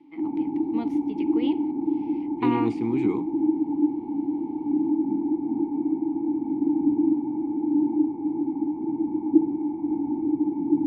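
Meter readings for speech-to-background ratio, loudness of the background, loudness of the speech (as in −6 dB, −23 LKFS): −4.0 dB, −25.5 LKFS, −29.5 LKFS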